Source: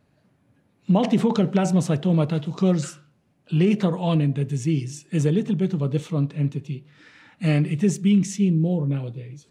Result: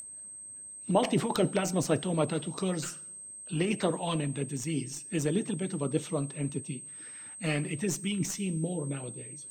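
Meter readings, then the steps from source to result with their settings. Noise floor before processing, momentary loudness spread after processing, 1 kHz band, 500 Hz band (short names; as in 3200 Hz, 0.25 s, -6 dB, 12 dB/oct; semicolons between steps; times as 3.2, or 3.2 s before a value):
-64 dBFS, 13 LU, -3.5 dB, -5.0 dB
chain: tracing distortion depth 0.029 ms; whine 8300 Hz -29 dBFS; two-slope reverb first 0.51 s, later 1.8 s, from -20 dB, DRR 12.5 dB; harmonic-percussive split harmonic -13 dB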